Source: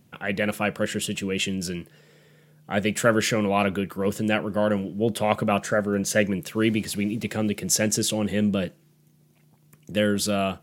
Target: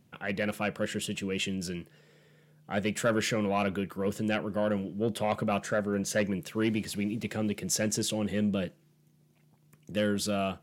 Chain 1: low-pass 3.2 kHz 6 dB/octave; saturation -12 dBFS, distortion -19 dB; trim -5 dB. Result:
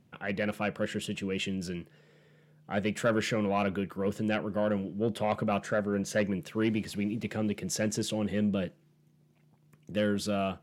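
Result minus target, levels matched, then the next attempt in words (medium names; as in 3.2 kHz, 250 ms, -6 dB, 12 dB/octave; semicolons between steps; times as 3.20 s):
8 kHz band -4.5 dB
low-pass 8.8 kHz 6 dB/octave; saturation -12 dBFS, distortion -19 dB; trim -5 dB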